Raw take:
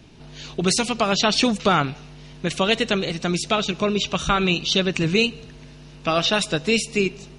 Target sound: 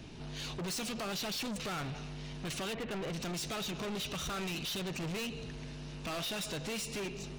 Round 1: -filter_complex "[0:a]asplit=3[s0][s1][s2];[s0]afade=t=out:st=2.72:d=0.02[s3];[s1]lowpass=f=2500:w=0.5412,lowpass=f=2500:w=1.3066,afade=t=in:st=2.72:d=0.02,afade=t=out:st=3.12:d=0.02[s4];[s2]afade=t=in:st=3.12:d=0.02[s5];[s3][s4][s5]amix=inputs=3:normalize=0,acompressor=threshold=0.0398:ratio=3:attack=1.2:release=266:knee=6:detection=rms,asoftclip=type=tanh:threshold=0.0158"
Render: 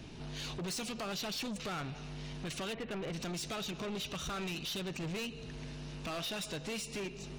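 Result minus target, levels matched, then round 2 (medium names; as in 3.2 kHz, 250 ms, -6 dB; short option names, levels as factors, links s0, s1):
compression: peak gain reduction +6 dB
-filter_complex "[0:a]asplit=3[s0][s1][s2];[s0]afade=t=out:st=2.72:d=0.02[s3];[s1]lowpass=f=2500:w=0.5412,lowpass=f=2500:w=1.3066,afade=t=in:st=2.72:d=0.02,afade=t=out:st=3.12:d=0.02[s4];[s2]afade=t=in:st=3.12:d=0.02[s5];[s3][s4][s5]amix=inputs=3:normalize=0,acompressor=threshold=0.112:ratio=3:attack=1.2:release=266:knee=6:detection=rms,asoftclip=type=tanh:threshold=0.0158"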